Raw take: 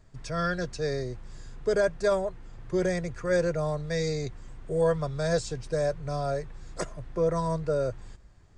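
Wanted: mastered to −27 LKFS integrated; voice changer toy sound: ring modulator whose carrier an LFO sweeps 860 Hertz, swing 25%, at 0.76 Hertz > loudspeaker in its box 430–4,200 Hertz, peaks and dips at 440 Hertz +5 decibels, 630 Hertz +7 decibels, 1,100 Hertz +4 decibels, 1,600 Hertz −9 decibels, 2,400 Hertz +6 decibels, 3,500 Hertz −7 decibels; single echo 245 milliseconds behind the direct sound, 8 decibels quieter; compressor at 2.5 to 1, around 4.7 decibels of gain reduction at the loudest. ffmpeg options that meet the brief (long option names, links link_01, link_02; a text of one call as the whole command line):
ffmpeg -i in.wav -af "acompressor=threshold=-27dB:ratio=2.5,aecho=1:1:245:0.398,aeval=exprs='val(0)*sin(2*PI*860*n/s+860*0.25/0.76*sin(2*PI*0.76*n/s))':channel_layout=same,highpass=430,equalizer=frequency=440:width_type=q:width=4:gain=5,equalizer=frequency=630:width_type=q:width=4:gain=7,equalizer=frequency=1100:width_type=q:width=4:gain=4,equalizer=frequency=1600:width_type=q:width=4:gain=-9,equalizer=frequency=2400:width_type=q:width=4:gain=6,equalizer=frequency=3500:width_type=q:width=4:gain=-7,lowpass=frequency=4200:width=0.5412,lowpass=frequency=4200:width=1.3066,volume=6.5dB" out.wav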